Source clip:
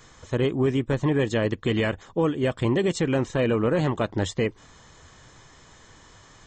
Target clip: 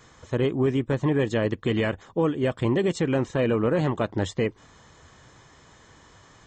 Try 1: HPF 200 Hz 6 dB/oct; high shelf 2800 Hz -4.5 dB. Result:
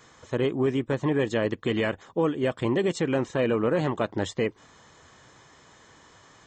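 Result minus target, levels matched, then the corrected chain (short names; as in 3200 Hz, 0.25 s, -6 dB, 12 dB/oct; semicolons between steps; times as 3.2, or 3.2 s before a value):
125 Hz band -3.0 dB
HPF 51 Hz 6 dB/oct; high shelf 2800 Hz -4.5 dB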